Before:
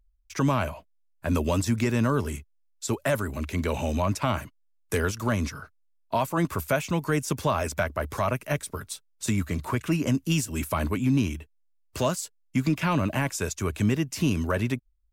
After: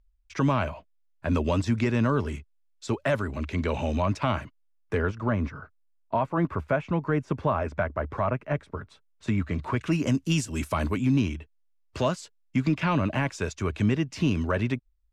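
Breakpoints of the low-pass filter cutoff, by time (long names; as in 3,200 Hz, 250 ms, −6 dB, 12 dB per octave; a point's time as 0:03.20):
0:04.36 4,200 Hz
0:05.15 1,700 Hz
0:08.93 1,700 Hz
0:09.72 3,700 Hz
0:09.98 7,200 Hz
0:10.94 7,200 Hz
0:11.35 4,300 Hz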